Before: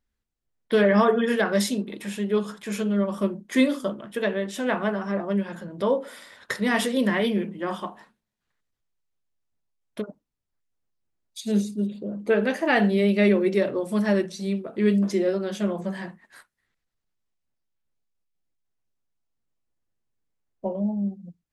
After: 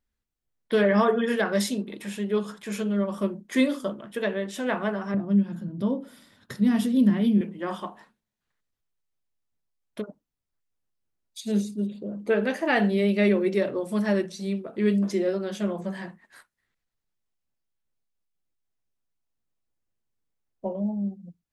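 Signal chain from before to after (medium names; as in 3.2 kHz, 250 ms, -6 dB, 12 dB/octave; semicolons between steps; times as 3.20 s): 5.14–7.41 s: graphic EQ 125/250/500/1000/2000/4000/8000 Hz +9/+7/-9/-6/-10/-3/-7 dB; trim -2 dB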